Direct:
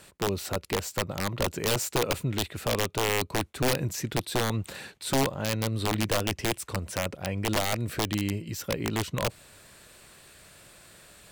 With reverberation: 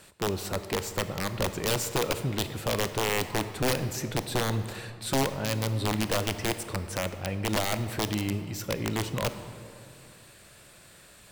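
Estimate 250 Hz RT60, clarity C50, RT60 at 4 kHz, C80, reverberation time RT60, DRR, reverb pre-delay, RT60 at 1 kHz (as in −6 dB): 3.2 s, 11.0 dB, 1.4 s, 11.5 dB, 2.5 s, 10.0 dB, 23 ms, 2.3 s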